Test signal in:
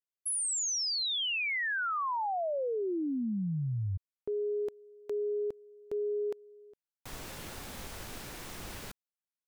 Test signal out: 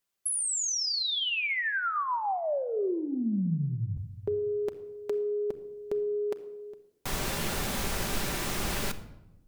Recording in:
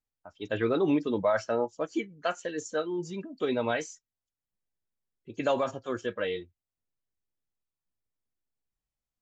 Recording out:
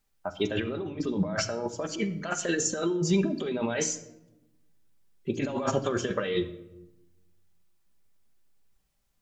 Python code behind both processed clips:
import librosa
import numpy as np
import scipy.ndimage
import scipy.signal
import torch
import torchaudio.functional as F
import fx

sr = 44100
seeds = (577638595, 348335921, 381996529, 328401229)

y = fx.over_compress(x, sr, threshold_db=-37.0, ratio=-1.0)
y = fx.room_shoebox(y, sr, seeds[0], volume_m3=3700.0, walls='furnished', distance_m=1.2)
y = y * librosa.db_to_amplitude(7.0)